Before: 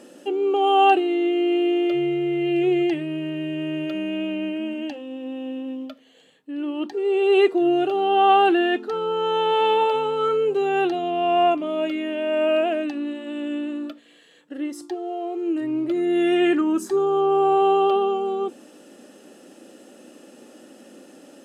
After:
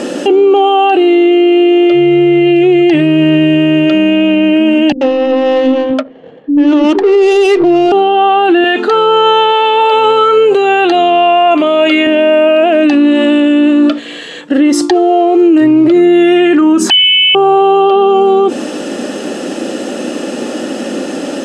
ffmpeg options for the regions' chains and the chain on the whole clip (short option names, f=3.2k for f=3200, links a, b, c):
-filter_complex "[0:a]asettb=1/sr,asplit=3[a][b][c];[a]atrim=end=4.924[d];[b]atrim=start=4.92:end=7.92,asetpts=PTS-STARTPTS,afade=t=in:d=0.004:c=qsin,afade=t=out:st=2.996:d=0.004:c=qsin,adynamicsmooth=sensitivity=6:basefreq=600,acrossover=split=270[e][f];[f]adelay=90[g];[e][g]amix=inputs=2:normalize=0,atrim=end_sample=132300[h];[c]atrim=start=7.916[i];[d][h]acrossfade=d=0.004:c1=hsin:c2=qsin[j];[j][i]acrossfade=d=0.004:c1=qsin:c2=hsin,asettb=1/sr,asplit=3[k][l][m];[k]atrim=end=8.644[n];[l]atrim=start=8.64:end=12.07,asetpts=PTS-STARTPTS,afade=t=in:d=0.004:c=qsin,afade=t=out:st=3.426:d=0.004:c=qsin,highpass=f=710:p=1,bandreject=f=5.4k:w=5.2,acompressor=threshold=-24dB:ratio=6:attack=3.2:release=140:knee=1:detection=peak[o];[m]atrim=start=12.066[p];[n][o]acrossfade=d=0.004:c1=hsin:c2=qsin[q];[q][p]acrossfade=d=0.004:c1=qsin:c2=hsin,asettb=1/sr,asplit=3[r][s][t];[r]atrim=end=16.904[u];[s]atrim=start=16.9:end=17.35,asetpts=PTS-STARTPTS,afade=t=in:d=0.004:c=qsin,afade=t=out:st=0.446:d=0.004:c=qsin,lowpass=f=2.9k:t=q:w=0.5098,lowpass=f=2.9k:t=q:w=0.6013,lowpass=f=2.9k:t=q:w=0.9,lowpass=f=2.9k:t=q:w=2.563,afreqshift=-3400,highpass=f=520:p=1[v];[t]atrim=start=17.346[w];[u][v]acrossfade=d=0.004:c1=hsin:c2=qsin[x];[x][w]acrossfade=d=0.004:c1=qsin:c2=hsin,lowpass=6.9k,acompressor=threshold=-24dB:ratio=6,alimiter=level_in=29dB:limit=-1dB:release=50:level=0:latency=1,volume=-1dB"